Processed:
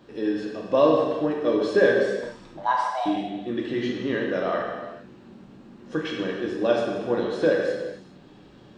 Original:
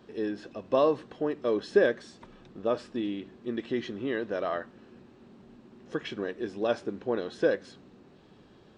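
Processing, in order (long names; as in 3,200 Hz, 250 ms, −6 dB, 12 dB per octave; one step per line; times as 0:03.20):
0:02.57–0:03.06: frequency shifter +400 Hz
reverb whose tail is shaped and stops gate 460 ms falling, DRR −2 dB
level +2 dB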